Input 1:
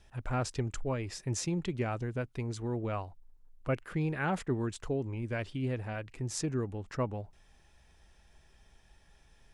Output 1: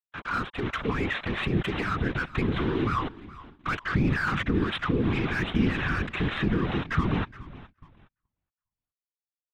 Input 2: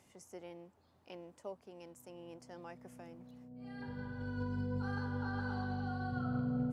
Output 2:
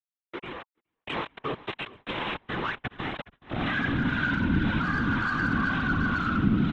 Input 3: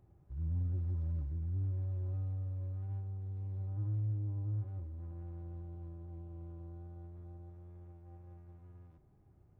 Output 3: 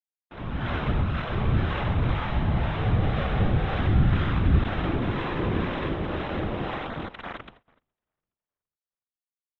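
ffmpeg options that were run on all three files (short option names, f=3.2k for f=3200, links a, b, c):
-filter_complex "[0:a]firequalizer=gain_entry='entry(110,0);entry(170,5);entry(370,7);entry(570,-19);entry(1100,14);entry(2300,12)':delay=0.05:min_phase=1,aresample=8000,acrusher=bits=6:mix=0:aa=0.000001,aresample=44100,bandreject=f=960:w=15,asplit=2[a][b];[b]highpass=f=720:p=1,volume=26dB,asoftclip=type=tanh:threshold=-9dB[c];[a][c]amix=inputs=2:normalize=0,lowpass=f=1.1k:p=1,volume=-6dB,acrossover=split=520[d][e];[d]aeval=exprs='val(0)*(1-0.5/2+0.5/2*cos(2*PI*2*n/s))':c=same[f];[e]aeval=exprs='val(0)*(1-0.5/2-0.5/2*cos(2*PI*2*n/s))':c=same[g];[f][g]amix=inputs=2:normalize=0,dynaudnorm=f=290:g=5:m=16.5dB,alimiter=limit=-12.5dB:level=0:latency=1:release=65,afftfilt=real='hypot(re,im)*cos(2*PI*random(0))':imag='hypot(re,im)*sin(2*PI*random(1))':win_size=512:overlap=0.75,asubboost=boost=3:cutoff=240,asplit=2[h][i];[i]asplit=4[j][k][l][m];[j]adelay=417,afreqshift=-40,volume=-18.5dB[n];[k]adelay=834,afreqshift=-80,volume=-25.6dB[o];[l]adelay=1251,afreqshift=-120,volume=-32.8dB[p];[m]adelay=1668,afreqshift=-160,volume=-39.9dB[q];[n][o][p][q]amix=inputs=4:normalize=0[r];[h][r]amix=inputs=2:normalize=0,agate=range=-28dB:threshold=-47dB:ratio=16:detection=peak,volume=-2.5dB"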